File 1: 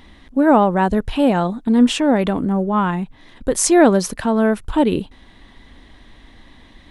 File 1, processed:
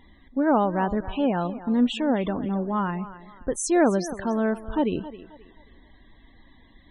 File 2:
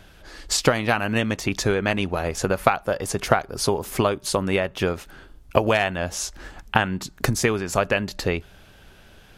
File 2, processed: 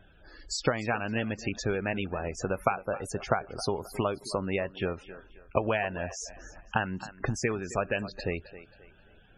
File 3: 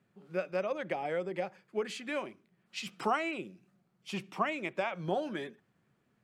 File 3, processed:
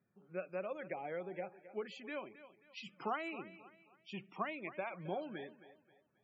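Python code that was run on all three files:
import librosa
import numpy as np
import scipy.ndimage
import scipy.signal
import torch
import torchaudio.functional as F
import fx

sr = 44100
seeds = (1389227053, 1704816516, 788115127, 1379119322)

y = fx.echo_thinned(x, sr, ms=267, feedback_pct=38, hz=260.0, wet_db=-14)
y = fx.spec_topn(y, sr, count=64)
y = y * librosa.db_to_amplitude(-8.0)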